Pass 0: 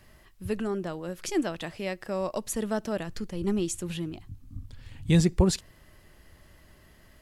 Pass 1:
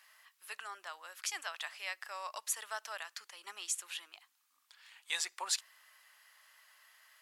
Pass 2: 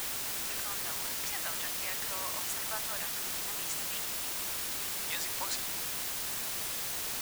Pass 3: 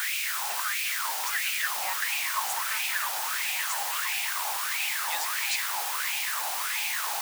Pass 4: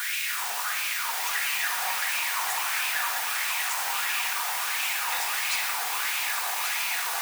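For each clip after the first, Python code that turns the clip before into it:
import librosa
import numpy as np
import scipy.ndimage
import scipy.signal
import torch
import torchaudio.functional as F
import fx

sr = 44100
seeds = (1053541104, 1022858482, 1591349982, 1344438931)

y1 = scipy.signal.sosfilt(scipy.signal.butter(4, 990.0, 'highpass', fs=sr, output='sos'), x)
y1 = F.gain(torch.from_numpy(y1), -1.0).numpy()
y2 = fx.tilt_eq(y1, sr, slope=-2.0)
y2 = fx.quant_dither(y2, sr, seeds[0], bits=6, dither='triangular')
y3 = fx.filter_lfo_highpass(y2, sr, shape='sine', hz=1.5, low_hz=780.0, high_hz=2500.0, q=6.6)
y3 = fx.echo_stepped(y3, sr, ms=420, hz=210.0, octaves=0.7, feedback_pct=70, wet_db=-0.5)
y3 = fx.leveller(y3, sr, passes=1)
y4 = y3 + 10.0 ** (-6.5 / 20.0) * np.pad(y3, (int(1134 * sr / 1000.0), 0))[:len(y3)]
y4 = fx.room_shoebox(y4, sr, seeds[1], volume_m3=1300.0, walls='mixed', distance_m=1.8)
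y4 = F.gain(torch.from_numpy(y4), -2.0).numpy()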